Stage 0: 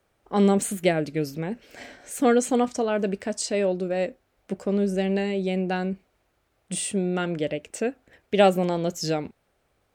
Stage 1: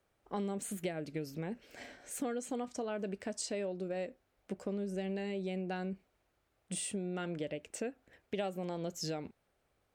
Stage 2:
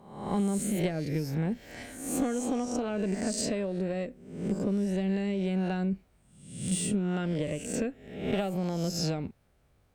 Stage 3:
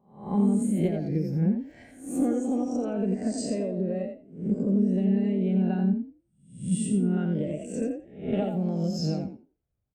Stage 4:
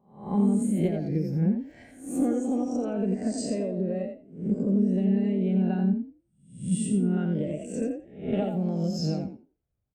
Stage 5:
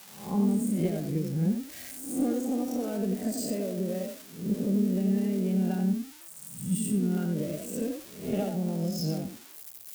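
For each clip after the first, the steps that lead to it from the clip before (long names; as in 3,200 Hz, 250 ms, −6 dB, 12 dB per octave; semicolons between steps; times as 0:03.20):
downward compressor 6 to 1, threshold −27 dBFS, peak gain reduction 13.5 dB; level −7.5 dB
peak hold with a rise ahead of every peak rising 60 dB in 0.73 s; harmonic generator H 4 −26 dB, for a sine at −20 dBFS; bass and treble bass +11 dB, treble +1 dB; level +2.5 dB
on a send: echo with shifted repeats 86 ms, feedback 30%, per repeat +37 Hz, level −4.5 dB; on the sum: every bin expanded away from the loudest bin 1.5 to 1; level +2 dB
no processing that can be heard
spike at every zero crossing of −28.5 dBFS; level −2.5 dB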